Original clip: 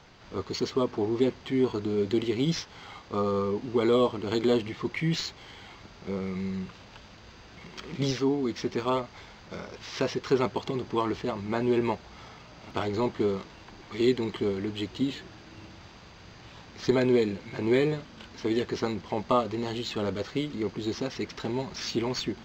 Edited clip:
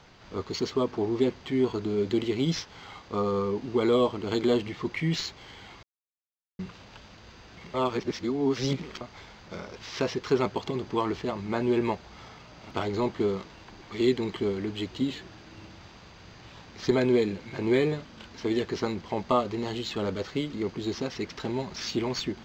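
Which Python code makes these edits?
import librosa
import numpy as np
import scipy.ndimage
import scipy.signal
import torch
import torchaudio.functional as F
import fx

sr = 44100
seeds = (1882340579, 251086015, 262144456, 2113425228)

y = fx.edit(x, sr, fx.silence(start_s=5.83, length_s=0.76),
    fx.reverse_span(start_s=7.74, length_s=1.27), tone=tone)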